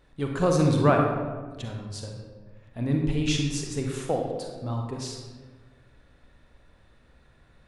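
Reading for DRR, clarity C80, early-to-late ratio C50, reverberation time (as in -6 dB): 1.5 dB, 4.5 dB, 2.5 dB, 1.4 s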